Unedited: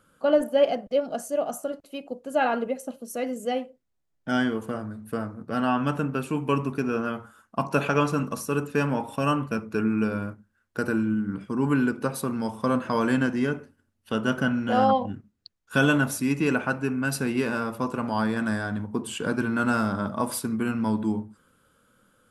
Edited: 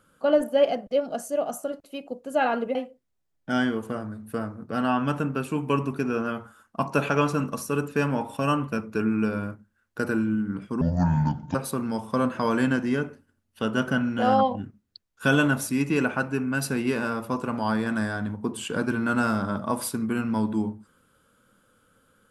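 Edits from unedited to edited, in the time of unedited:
0:02.75–0:03.54: remove
0:11.60–0:12.05: play speed 61%

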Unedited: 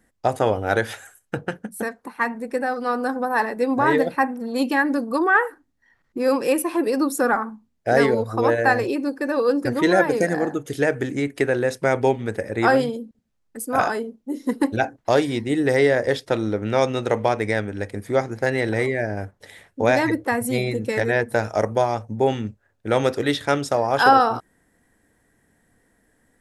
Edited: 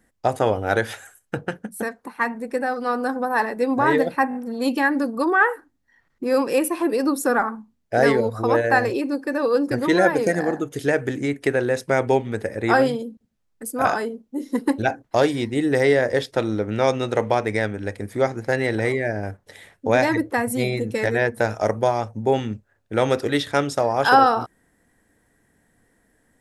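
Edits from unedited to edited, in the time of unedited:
0:04.29: stutter 0.02 s, 4 plays

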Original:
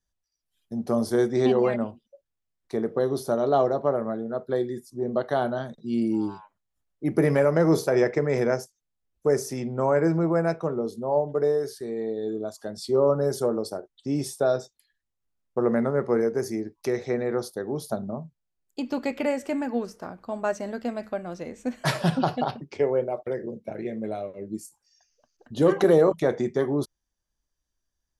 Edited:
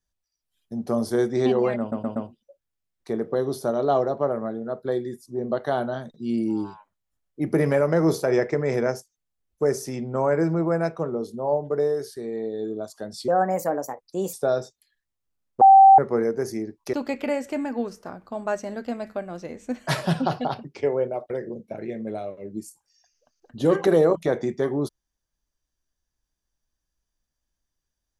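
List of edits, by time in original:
0:01.80: stutter 0.12 s, 4 plays
0:12.92–0:14.31: play speed 132%
0:15.59–0:15.96: beep over 777 Hz −7.5 dBFS
0:16.91–0:18.90: remove

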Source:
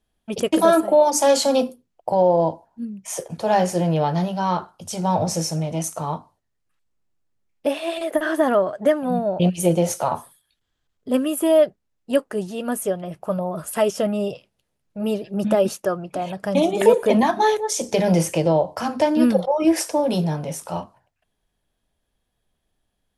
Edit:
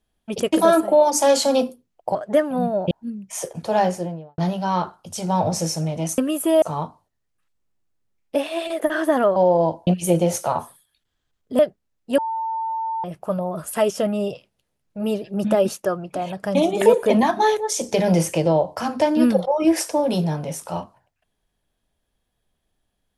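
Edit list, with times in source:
0:02.15–0:02.66: swap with 0:08.67–0:09.43
0:03.46–0:04.13: fade out and dull
0:11.15–0:11.59: move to 0:05.93
0:12.18–0:13.04: beep over 897 Hz −22.5 dBFS

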